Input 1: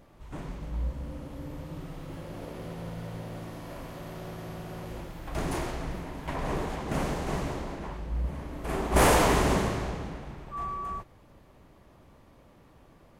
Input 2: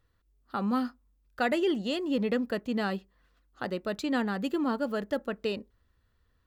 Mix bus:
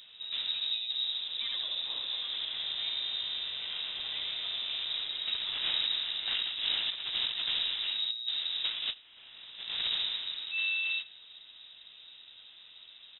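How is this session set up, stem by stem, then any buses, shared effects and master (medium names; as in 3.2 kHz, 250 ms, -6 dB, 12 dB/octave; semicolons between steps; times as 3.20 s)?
-1.0 dB, 0.00 s, no send, echo send -22 dB, compressor with a negative ratio -33 dBFS, ratio -0.5
-16.5 dB, 0.00 s, no send, echo send -3.5 dB, none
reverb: none
echo: delay 81 ms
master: frequency inversion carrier 3.8 kHz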